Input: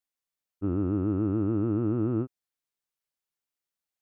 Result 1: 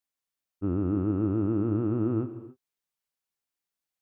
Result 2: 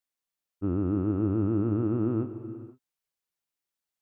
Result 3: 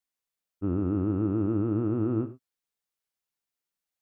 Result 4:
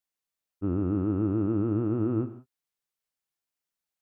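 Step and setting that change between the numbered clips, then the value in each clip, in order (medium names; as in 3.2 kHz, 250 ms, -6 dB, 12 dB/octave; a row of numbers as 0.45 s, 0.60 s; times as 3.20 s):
gated-style reverb, gate: 310 ms, 530 ms, 130 ms, 200 ms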